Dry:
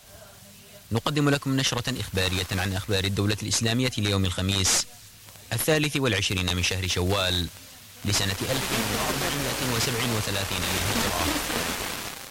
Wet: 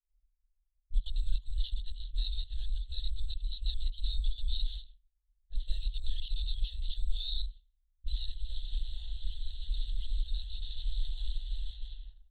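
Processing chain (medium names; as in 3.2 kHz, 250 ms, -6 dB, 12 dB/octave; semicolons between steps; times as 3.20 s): expander -34 dBFS; LPC vocoder at 8 kHz whisper; inverse Chebyshev band-stop 130–2500 Hz, stop band 60 dB; tilt EQ +2.5 dB/octave; level-controlled noise filter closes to 620 Hz, open at -46 dBFS; trim +17 dB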